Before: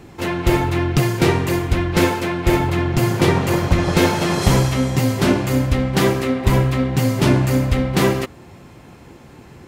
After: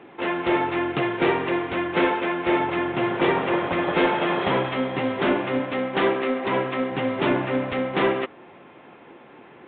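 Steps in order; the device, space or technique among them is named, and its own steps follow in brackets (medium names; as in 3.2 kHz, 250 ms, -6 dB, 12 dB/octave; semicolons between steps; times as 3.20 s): 5.59–6.92 s: high-pass 150 Hz; telephone (band-pass 340–3200 Hz; saturation -11 dBFS, distortion -20 dB; A-law 64 kbps 8 kHz)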